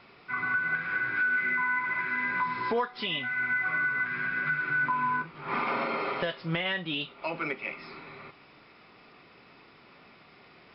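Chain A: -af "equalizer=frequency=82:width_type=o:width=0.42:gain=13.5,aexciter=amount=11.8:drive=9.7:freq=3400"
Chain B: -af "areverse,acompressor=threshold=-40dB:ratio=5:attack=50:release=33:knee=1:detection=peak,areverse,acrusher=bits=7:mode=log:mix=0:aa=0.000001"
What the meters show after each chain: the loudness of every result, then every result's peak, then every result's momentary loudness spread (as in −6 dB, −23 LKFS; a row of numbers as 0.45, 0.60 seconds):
−23.0, −35.5 LKFS; −4.5, −21.5 dBFS; 20, 20 LU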